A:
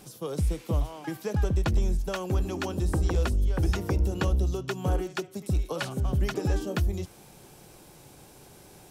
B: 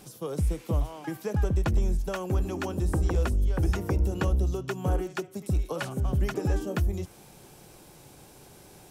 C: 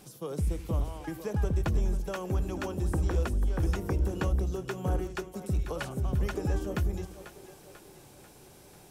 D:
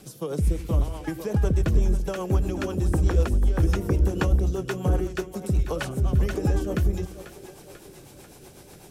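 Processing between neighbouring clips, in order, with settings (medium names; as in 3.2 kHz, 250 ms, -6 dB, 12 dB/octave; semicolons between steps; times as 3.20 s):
dynamic bell 4.1 kHz, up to -6 dB, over -53 dBFS, Q 1.2
two-band feedback delay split 350 Hz, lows 85 ms, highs 492 ms, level -11.5 dB; trim -3 dB
rotary cabinet horn 8 Hz; trim +8 dB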